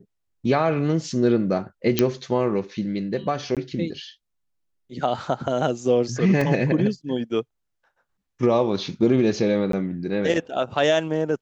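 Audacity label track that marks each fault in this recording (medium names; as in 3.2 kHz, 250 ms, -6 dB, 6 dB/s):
1.990000	1.990000	pop -3 dBFS
3.550000	3.570000	dropout 17 ms
6.410000	6.410000	dropout 3.8 ms
9.720000	9.730000	dropout 13 ms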